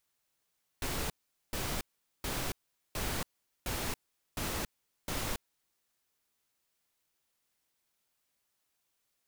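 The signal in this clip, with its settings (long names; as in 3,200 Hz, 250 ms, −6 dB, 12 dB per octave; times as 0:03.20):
noise bursts pink, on 0.28 s, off 0.43 s, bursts 7, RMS −35 dBFS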